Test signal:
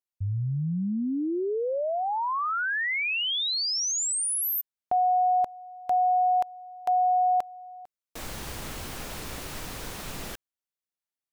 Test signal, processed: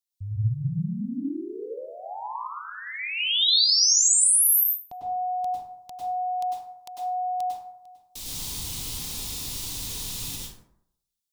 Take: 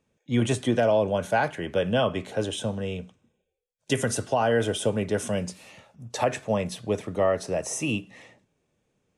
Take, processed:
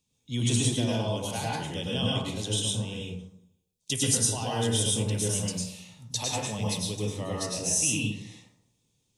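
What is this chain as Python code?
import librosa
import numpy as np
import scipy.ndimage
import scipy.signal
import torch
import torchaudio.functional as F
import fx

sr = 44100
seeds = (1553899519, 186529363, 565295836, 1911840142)

y = fx.curve_eq(x, sr, hz=(150.0, 660.0, 960.0, 1500.0, 3700.0), db=(0, -13, -5, -15, 10))
y = fx.rev_plate(y, sr, seeds[0], rt60_s=0.73, hf_ratio=0.45, predelay_ms=90, drr_db=-4.5)
y = y * 10.0 ** (-5.0 / 20.0)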